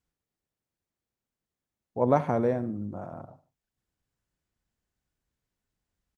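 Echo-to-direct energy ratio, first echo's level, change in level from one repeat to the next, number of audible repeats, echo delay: -16.5 dB, -17.0 dB, -7.5 dB, 2, 73 ms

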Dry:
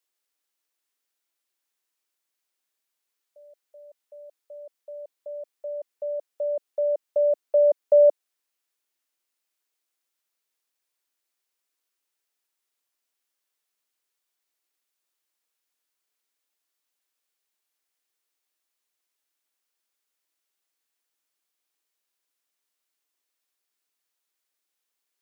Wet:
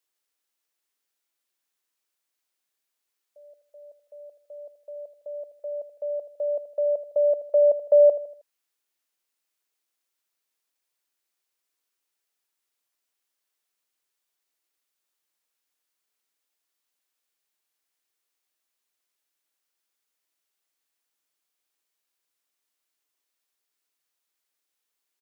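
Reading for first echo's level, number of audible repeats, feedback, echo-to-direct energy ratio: -14.0 dB, 3, 42%, -13.0 dB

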